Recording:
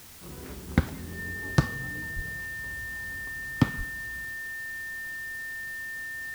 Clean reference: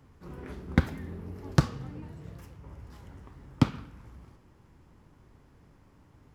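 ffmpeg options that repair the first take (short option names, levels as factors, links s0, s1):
-filter_complex "[0:a]bandreject=f=1800:w=30,asplit=3[s0][s1][s2];[s0]afade=t=out:st=2.15:d=0.02[s3];[s1]highpass=f=140:w=0.5412,highpass=f=140:w=1.3066,afade=t=in:st=2.15:d=0.02,afade=t=out:st=2.27:d=0.02[s4];[s2]afade=t=in:st=2.27:d=0.02[s5];[s3][s4][s5]amix=inputs=3:normalize=0,asplit=3[s6][s7][s8];[s6]afade=t=out:st=3.77:d=0.02[s9];[s7]highpass=f=140:w=0.5412,highpass=f=140:w=1.3066,afade=t=in:st=3.77:d=0.02,afade=t=out:st=3.89:d=0.02[s10];[s8]afade=t=in:st=3.89:d=0.02[s11];[s9][s10][s11]amix=inputs=3:normalize=0,afwtdn=0.0035"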